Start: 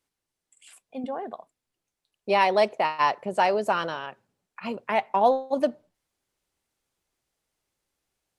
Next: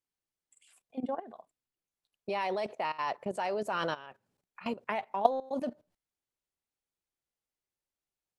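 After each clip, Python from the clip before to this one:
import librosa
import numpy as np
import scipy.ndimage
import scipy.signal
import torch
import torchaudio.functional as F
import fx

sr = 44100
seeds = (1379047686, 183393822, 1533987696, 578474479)

y = fx.level_steps(x, sr, step_db=16)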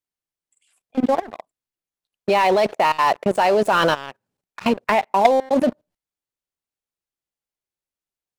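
y = fx.leveller(x, sr, passes=3)
y = y * 10.0 ** (5.0 / 20.0)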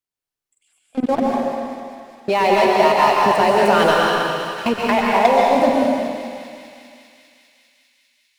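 y = fx.echo_thinned(x, sr, ms=200, feedback_pct=84, hz=980.0, wet_db=-12.5)
y = fx.rev_plate(y, sr, seeds[0], rt60_s=2.1, hf_ratio=1.0, predelay_ms=110, drr_db=-3.0)
y = y * 10.0 ** (-1.0 / 20.0)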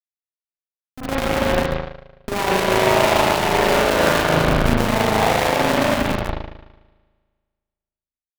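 y = fx.schmitt(x, sr, flips_db=-21.5)
y = fx.rev_spring(y, sr, rt60_s=1.7, pass_ms=(37,), chirp_ms=35, drr_db=-3.5)
y = fx.cheby_harmonics(y, sr, harmonics=(3, 6, 7, 8), levels_db=(-31, -24, -19, -22), full_scale_db=-1.0)
y = y * 10.0 ** (-1.5 / 20.0)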